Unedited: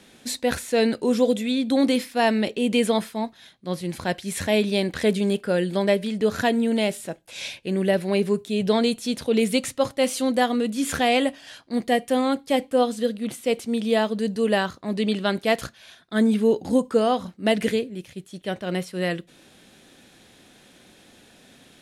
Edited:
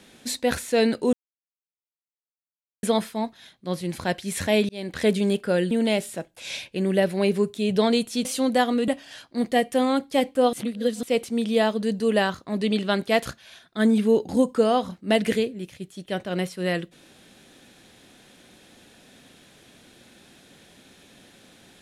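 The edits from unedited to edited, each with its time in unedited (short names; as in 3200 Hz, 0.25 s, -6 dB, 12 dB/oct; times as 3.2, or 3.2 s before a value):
1.13–2.83 mute
4.69–5.05 fade in linear
5.71–6.62 cut
9.16–10.07 cut
10.7–11.24 cut
12.89–13.39 reverse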